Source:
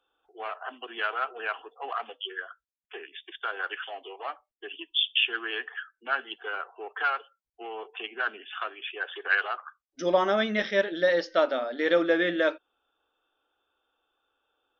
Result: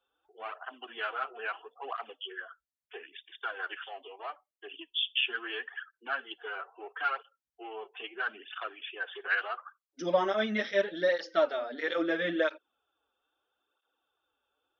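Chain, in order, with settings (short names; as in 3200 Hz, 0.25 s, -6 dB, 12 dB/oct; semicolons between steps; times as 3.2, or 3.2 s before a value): tape flanging out of phase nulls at 0.76 Hz, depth 6.8 ms; gain -1.5 dB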